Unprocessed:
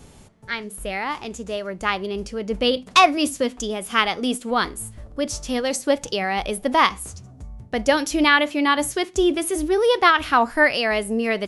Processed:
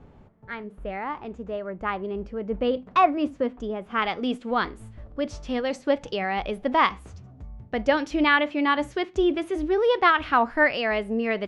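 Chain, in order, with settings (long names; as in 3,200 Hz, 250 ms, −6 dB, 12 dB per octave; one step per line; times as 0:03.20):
low-pass filter 1,500 Hz 12 dB per octave, from 0:04.02 2,900 Hz
level −3 dB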